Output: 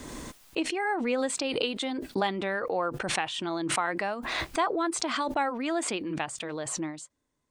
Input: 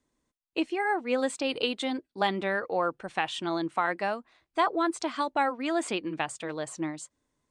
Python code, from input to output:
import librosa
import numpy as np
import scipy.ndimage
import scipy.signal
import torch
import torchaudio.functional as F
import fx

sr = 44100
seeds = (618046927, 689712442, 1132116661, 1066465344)

y = fx.pre_swell(x, sr, db_per_s=30.0)
y = y * librosa.db_to_amplitude(-2.0)